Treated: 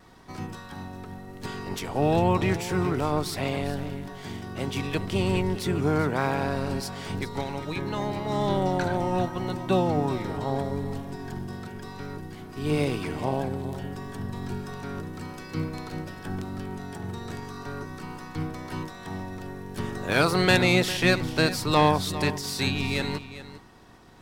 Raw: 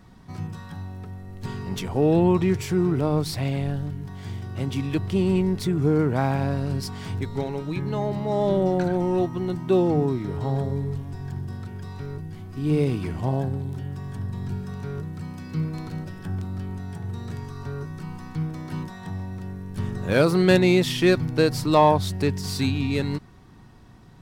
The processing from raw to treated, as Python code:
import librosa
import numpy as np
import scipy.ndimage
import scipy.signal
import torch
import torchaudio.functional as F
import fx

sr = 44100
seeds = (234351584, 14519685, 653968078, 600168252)

y = fx.spec_clip(x, sr, under_db=14)
y = fx.vibrato(y, sr, rate_hz=0.86, depth_cents=12.0)
y = y + 10.0 ** (-14.0 / 20.0) * np.pad(y, (int(402 * sr / 1000.0), 0))[:len(y)]
y = F.gain(torch.from_numpy(y), -3.0).numpy()